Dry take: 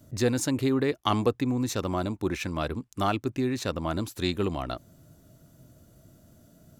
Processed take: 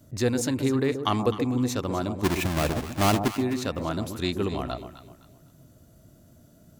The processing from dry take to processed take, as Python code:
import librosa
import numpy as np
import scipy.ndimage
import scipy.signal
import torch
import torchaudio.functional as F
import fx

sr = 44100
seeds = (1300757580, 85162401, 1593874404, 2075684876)

y = fx.halfwave_hold(x, sr, at=(2.23, 3.28), fade=0.02)
y = fx.echo_alternate(y, sr, ms=128, hz=940.0, feedback_pct=55, wet_db=-7.0)